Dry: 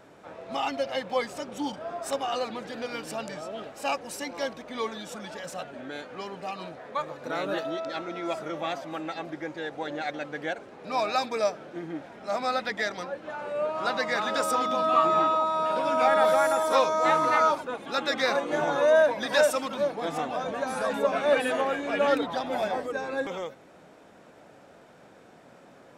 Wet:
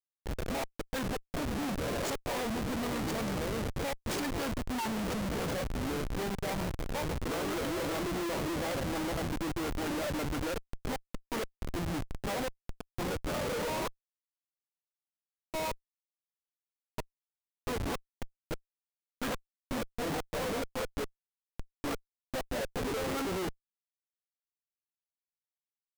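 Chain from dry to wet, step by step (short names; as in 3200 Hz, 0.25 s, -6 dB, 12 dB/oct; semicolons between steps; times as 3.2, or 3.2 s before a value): flipped gate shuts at -18 dBFS, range -35 dB; formant shift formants -3 st; Schmitt trigger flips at -37 dBFS; gain +2.5 dB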